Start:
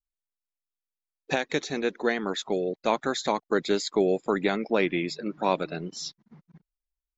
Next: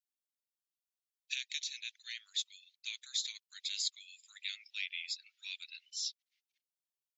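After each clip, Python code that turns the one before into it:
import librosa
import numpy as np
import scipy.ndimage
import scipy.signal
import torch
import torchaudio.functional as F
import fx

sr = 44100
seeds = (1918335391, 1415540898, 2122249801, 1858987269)

y = scipy.signal.sosfilt(scipy.signal.butter(6, 2600.0, 'highpass', fs=sr, output='sos'), x)
y = y * librosa.db_to_amplitude(-1.5)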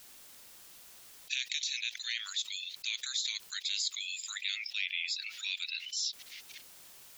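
y = fx.env_flatten(x, sr, amount_pct=70)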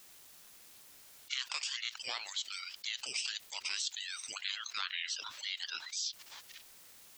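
y = fx.echo_wet_bandpass(x, sr, ms=85, feedback_pct=35, hz=640.0, wet_db=-13)
y = fx.ring_lfo(y, sr, carrier_hz=790.0, swing_pct=60, hz=1.9)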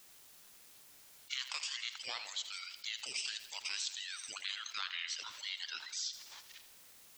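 y = fx.echo_feedback(x, sr, ms=82, feedback_pct=59, wet_db=-12.5)
y = y * librosa.db_to_amplitude(-2.5)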